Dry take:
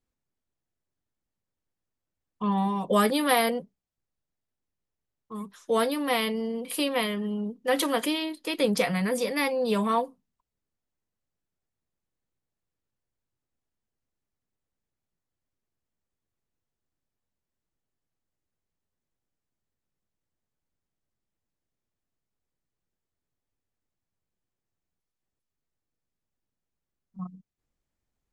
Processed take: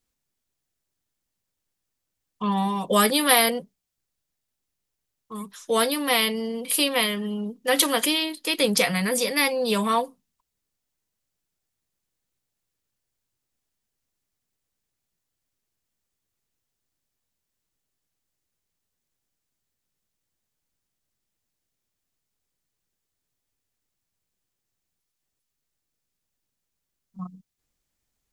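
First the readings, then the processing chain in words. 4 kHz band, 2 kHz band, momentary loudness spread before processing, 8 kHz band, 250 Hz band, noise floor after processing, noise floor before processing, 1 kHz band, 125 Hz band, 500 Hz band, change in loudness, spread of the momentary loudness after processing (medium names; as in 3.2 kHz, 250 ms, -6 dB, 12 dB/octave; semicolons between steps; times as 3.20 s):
+8.5 dB, +6.0 dB, 16 LU, +11.0 dB, +1.0 dB, -82 dBFS, under -85 dBFS, +2.5 dB, +1.0 dB, +1.5 dB, +4.5 dB, 18 LU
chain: treble shelf 2.2 kHz +10.5 dB; trim +1 dB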